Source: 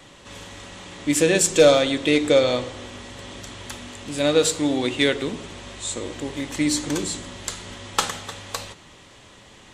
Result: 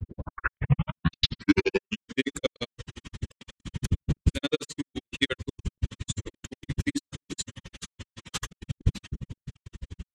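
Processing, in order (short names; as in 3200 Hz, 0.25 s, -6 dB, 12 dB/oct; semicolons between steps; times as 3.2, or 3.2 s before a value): tape start at the beginning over 2.27 s; wind noise 110 Hz -22 dBFS; HPF 52 Hz 12 dB/oct; bell 720 Hz -12.5 dB 1.1 oct; de-hum 65.59 Hz, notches 13; grains 50 ms, grains 12/s, spray 10 ms, pitch spread up and down by 0 st; step gate "xxx.x.xxxx.x.xxx" 165 bpm -60 dB; reverb removal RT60 0.86 s; speed mistake 25 fps video run at 24 fps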